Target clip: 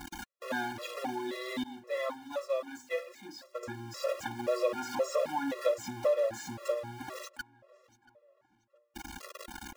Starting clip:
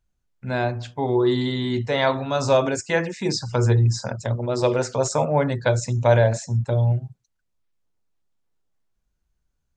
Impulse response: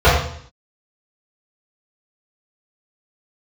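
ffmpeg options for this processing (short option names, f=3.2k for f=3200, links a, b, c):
-filter_complex "[0:a]aeval=exprs='val(0)+0.5*0.0841*sgn(val(0))':c=same,highshelf=f=2k:g=-11,acompressor=threshold=-21dB:ratio=8,highpass=f=930:p=1,asettb=1/sr,asplit=3[a][b][c];[a]atrim=end=1.634[d];[b]atrim=start=1.63:end=3.63,asetpts=PTS-STARTPTS,afade=t=in:d=0.004:c=qsin,afade=t=out:st=1.996:d=0.004:c=qsin,agate=range=-33dB:threshold=-23dB:ratio=3:detection=peak[e];[c]atrim=start=3.626[f];[d][e]acrossfade=d=0.004:c1=hsin:c2=qsin[g];[g][f]acrossfade=d=0.004:c1=qsin:c2=hsin,aecho=1:1:3.6:0.91,asplit=2[h][i];[i]adelay=682,lowpass=f=3.2k:p=1,volume=-22dB,asplit=2[j][k];[k]adelay=682,lowpass=f=3.2k:p=1,volume=0.49,asplit=2[l][m];[m]adelay=682,lowpass=f=3.2k:p=1,volume=0.49[n];[h][j][l][n]amix=inputs=4:normalize=0,acrossover=split=3400[o][p];[p]acompressor=threshold=-40dB:ratio=4:attack=1:release=60[q];[o][q]amix=inputs=2:normalize=0,afftfilt=real='re*gt(sin(2*PI*1.9*pts/sr)*(1-2*mod(floor(b*sr/1024/350),2)),0)':imag='im*gt(sin(2*PI*1.9*pts/sr)*(1-2*mod(floor(b*sr/1024/350),2)),0)':win_size=1024:overlap=0.75"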